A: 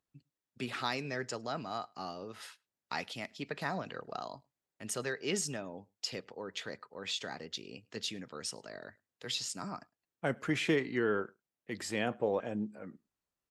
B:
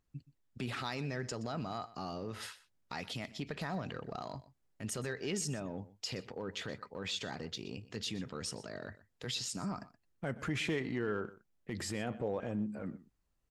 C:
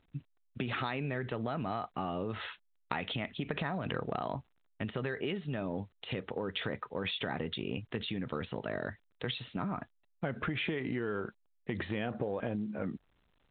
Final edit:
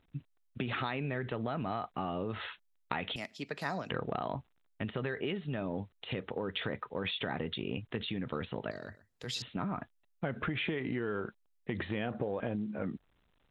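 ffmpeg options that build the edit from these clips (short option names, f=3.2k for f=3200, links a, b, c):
-filter_complex "[2:a]asplit=3[a][b][c];[a]atrim=end=3.162[d];[0:a]atrim=start=3.158:end=3.902[e];[b]atrim=start=3.898:end=8.712[f];[1:a]atrim=start=8.708:end=9.422[g];[c]atrim=start=9.418[h];[d][e]acrossfade=d=0.004:c1=hsin:c2=hsin[i];[i][f]acrossfade=d=0.004:c1=hsin:c2=hsin[j];[j][g]acrossfade=d=0.004:c1=hsin:c2=hsin[k];[k][h]acrossfade=d=0.004:c1=hsin:c2=hsin"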